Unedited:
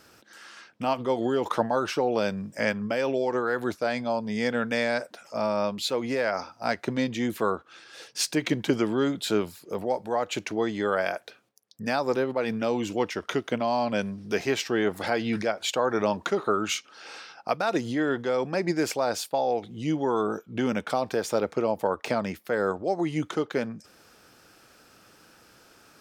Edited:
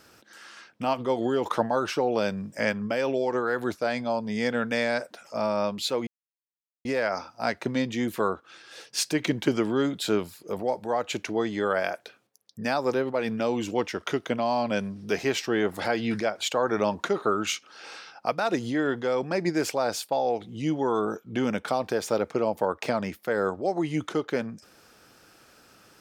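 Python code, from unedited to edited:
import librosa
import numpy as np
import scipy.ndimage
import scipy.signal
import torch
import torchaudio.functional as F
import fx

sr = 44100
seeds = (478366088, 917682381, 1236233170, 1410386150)

y = fx.edit(x, sr, fx.insert_silence(at_s=6.07, length_s=0.78), tone=tone)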